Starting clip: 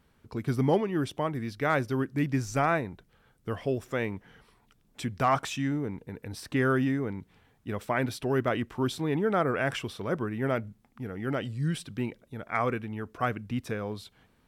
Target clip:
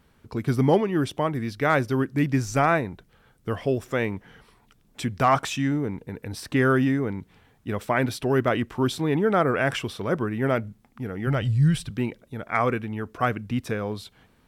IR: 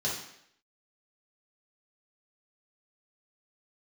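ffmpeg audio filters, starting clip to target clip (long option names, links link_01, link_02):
-filter_complex "[0:a]asplit=3[link_01][link_02][link_03];[link_01]afade=type=out:start_time=11.26:duration=0.02[link_04];[link_02]asubboost=boost=8:cutoff=96,afade=type=in:start_time=11.26:duration=0.02,afade=type=out:start_time=11.89:duration=0.02[link_05];[link_03]afade=type=in:start_time=11.89:duration=0.02[link_06];[link_04][link_05][link_06]amix=inputs=3:normalize=0,volume=5dB"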